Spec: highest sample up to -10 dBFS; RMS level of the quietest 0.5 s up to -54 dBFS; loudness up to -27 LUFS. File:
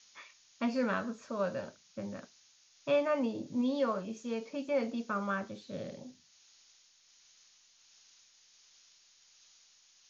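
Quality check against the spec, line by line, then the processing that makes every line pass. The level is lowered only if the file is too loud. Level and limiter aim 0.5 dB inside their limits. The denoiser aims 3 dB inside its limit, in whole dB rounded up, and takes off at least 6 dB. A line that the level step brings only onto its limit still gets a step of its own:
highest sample -19.5 dBFS: OK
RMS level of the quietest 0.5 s -65 dBFS: OK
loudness -35.0 LUFS: OK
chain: none

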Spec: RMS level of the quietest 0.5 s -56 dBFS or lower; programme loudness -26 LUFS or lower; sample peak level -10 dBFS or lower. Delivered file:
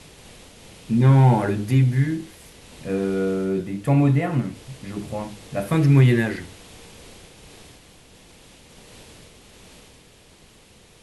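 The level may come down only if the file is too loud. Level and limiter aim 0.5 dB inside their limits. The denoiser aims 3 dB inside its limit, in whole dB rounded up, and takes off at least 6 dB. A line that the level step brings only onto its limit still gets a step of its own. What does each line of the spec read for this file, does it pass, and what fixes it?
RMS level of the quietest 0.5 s -51 dBFS: fail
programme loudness -20.5 LUFS: fail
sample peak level -6.0 dBFS: fail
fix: gain -6 dB

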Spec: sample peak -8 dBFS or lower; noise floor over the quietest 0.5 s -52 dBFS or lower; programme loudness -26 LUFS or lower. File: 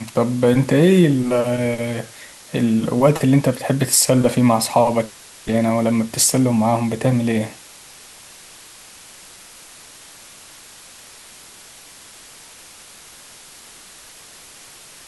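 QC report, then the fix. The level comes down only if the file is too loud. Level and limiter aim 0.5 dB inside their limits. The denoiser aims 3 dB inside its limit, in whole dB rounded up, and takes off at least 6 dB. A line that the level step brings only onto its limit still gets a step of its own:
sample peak -3.5 dBFS: fail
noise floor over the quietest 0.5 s -43 dBFS: fail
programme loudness -17.5 LUFS: fail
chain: denoiser 6 dB, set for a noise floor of -43 dBFS; gain -9 dB

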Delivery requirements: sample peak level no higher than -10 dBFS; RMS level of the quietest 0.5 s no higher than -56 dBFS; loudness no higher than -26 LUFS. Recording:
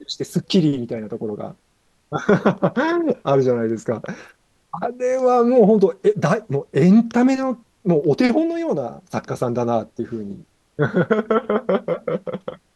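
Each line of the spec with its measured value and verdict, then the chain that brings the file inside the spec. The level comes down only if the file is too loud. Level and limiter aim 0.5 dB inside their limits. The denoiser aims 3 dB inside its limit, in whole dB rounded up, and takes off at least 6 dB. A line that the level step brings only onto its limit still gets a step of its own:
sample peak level -3.0 dBFS: fail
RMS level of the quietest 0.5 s -63 dBFS: OK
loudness -19.5 LUFS: fail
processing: gain -7 dB; limiter -10.5 dBFS

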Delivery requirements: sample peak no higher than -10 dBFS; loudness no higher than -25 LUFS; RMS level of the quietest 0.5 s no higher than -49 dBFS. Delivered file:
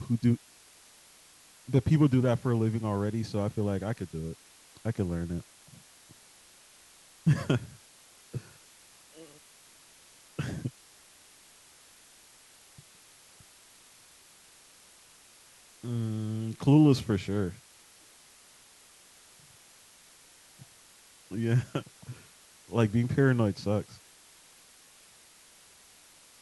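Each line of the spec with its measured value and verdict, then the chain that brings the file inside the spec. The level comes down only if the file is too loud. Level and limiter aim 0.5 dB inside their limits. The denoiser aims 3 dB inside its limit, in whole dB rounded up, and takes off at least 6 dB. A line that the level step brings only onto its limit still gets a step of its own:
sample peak -11.0 dBFS: OK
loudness -29.0 LUFS: OK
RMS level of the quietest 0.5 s -57 dBFS: OK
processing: none

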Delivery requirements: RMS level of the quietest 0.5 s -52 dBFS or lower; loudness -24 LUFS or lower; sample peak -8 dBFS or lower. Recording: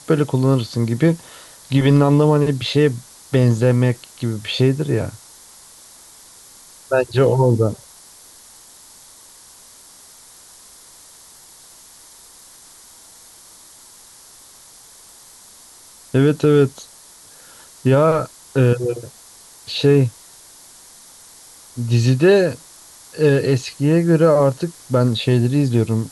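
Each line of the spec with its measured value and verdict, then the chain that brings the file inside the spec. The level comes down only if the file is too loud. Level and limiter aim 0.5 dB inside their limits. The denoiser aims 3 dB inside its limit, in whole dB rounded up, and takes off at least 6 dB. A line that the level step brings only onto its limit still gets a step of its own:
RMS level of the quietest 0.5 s -45 dBFS: fail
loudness -17.5 LUFS: fail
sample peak -4.5 dBFS: fail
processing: denoiser 6 dB, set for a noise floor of -45 dBFS; gain -7 dB

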